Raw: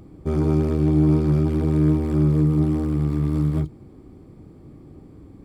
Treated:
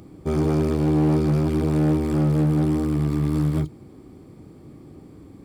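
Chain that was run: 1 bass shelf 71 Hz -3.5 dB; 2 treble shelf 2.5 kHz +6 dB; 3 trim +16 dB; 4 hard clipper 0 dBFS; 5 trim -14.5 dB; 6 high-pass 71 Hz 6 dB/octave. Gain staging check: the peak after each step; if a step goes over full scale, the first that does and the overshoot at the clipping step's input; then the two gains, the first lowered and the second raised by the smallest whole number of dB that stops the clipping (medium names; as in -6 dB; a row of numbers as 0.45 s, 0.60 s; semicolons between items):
-9.0 dBFS, -9.0 dBFS, +7.0 dBFS, 0.0 dBFS, -14.5 dBFS, -12.0 dBFS; step 3, 7.0 dB; step 3 +9 dB, step 5 -7.5 dB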